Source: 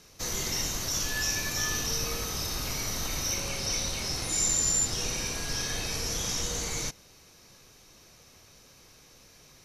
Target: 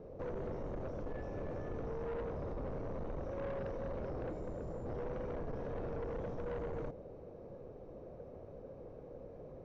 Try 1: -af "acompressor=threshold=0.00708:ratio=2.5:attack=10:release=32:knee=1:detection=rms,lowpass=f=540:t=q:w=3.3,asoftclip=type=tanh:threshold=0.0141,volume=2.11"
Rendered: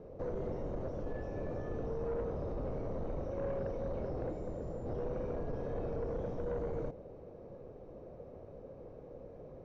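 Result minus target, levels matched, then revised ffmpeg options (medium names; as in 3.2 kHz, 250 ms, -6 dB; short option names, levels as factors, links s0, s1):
saturation: distortion -6 dB
-af "acompressor=threshold=0.00708:ratio=2.5:attack=10:release=32:knee=1:detection=rms,lowpass=f=540:t=q:w=3.3,asoftclip=type=tanh:threshold=0.00708,volume=2.11"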